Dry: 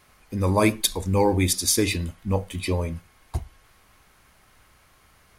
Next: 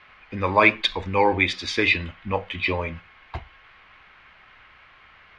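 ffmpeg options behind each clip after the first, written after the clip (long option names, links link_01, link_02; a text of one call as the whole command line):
ffmpeg -i in.wav -filter_complex "[0:a]lowpass=frequency=2800:width=0.5412,lowpass=frequency=2800:width=1.3066,tiltshelf=frequency=970:gain=-9,acrossover=split=320[link_01][link_02];[link_01]alimiter=level_in=6.5dB:limit=-24dB:level=0:latency=1:release=375,volume=-6.5dB[link_03];[link_03][link_02]amix=inputs=2:normalize=0,volume=6dB" out.wav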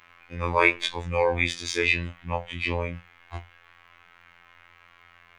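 ffmpeg -i in.wav -af "afftfilt=real='hypot(re,im)*cos(PI*b)':imag='0':win_size=2048:overlap=0.75,aexciter=amount=3.2:drive=8.1:freq=6400,afftfilt=real='re*2*eq(mod(b,4),0)':imag='im*2*eq(mod(b,4),0)':win_size=2048:overlap=0.75,volume=-3dB" out.wav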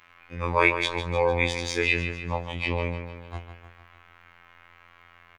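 ffmpeg -i in.wav -af "aecho=1:1:151|302|453|604|755|906:0.299|0.164|0.0903|0.0497|0.0273|0.015,volume=-1dB" out.wav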